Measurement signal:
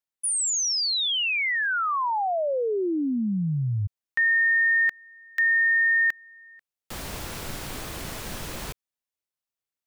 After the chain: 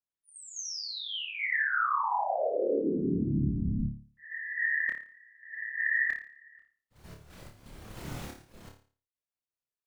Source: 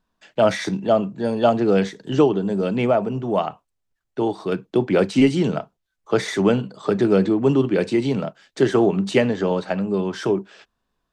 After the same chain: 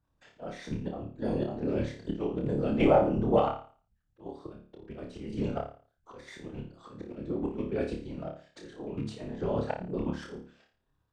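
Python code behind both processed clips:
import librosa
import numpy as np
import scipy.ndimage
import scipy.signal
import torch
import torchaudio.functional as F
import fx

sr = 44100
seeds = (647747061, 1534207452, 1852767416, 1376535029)

y = fx.rattle_buzz(x, sr, strikes_db=-20.0, level_db=-24.0)
y = fx.tilt_eq(y, sr, slope=-1.5)
y = fx.auto_swell(y, sr, attack_ms=712.0)
y = fx.level_steps(y, sr, step_db=9)
y = fx.whisperise(y, sr, seeds[0])
y = fx.room_flutter(y, sr, wall_m=4.8, rt60_s=0.41)
y = y * librosa.db_to_amplitude(-4.0)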